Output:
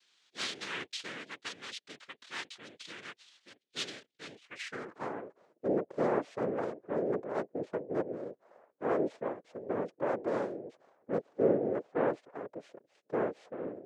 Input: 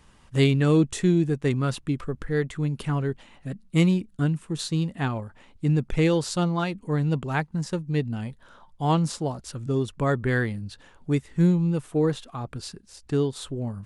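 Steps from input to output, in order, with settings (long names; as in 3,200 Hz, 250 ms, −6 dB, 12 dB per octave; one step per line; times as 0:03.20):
cochlear-implant simulation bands 3
band-pass filter sweep 3,500 Hz → 570 Hz, 0:04.34–0:05.23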